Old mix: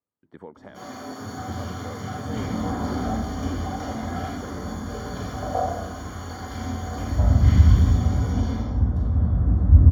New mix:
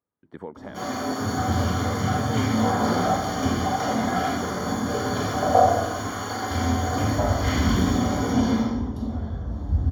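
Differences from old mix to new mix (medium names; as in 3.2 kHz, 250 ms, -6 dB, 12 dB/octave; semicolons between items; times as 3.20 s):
speech +4.5 dB; first sound +8.5 dB; second sound -10.5 dB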